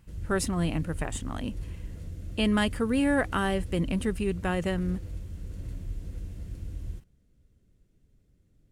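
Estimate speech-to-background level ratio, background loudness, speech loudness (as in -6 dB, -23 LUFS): 11.5 dB, -40.5 LUFS, -29.0 LUFS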